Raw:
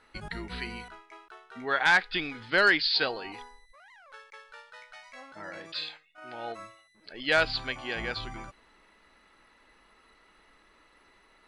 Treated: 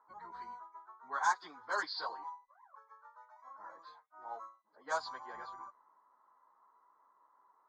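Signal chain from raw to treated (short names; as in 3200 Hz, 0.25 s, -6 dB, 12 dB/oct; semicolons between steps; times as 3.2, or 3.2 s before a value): double band-pass 2600 Hz, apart 2.7 oct; low-pass opened by the level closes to 1300 Hz, open at -37.5 dBFS; plain phase-vocoder stretch 0.67×; gain +9 dB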